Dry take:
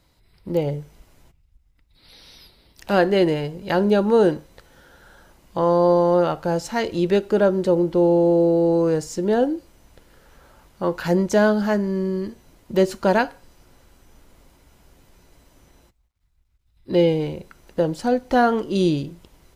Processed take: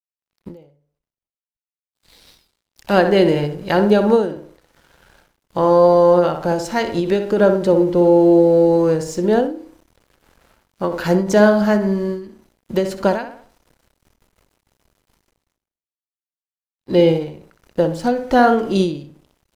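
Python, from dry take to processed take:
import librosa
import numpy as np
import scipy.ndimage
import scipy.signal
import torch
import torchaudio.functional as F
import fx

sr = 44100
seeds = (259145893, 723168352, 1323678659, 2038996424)

y = fx.echo_tape(x, sr, ms=62, feedback_pct=48, wet_db=-6.5, lp_hz=2200.0, drive_db=1.0, wow_cents=5)
y = np.sign(y) * np.maximum(np.abs(y) - 10.0 ** (-50.0 / 20.0), 0.0)
y = fx.end_taper(y, sr, db_per_s=100.0)
y = y * librosa.db_to_amplitude(4.0)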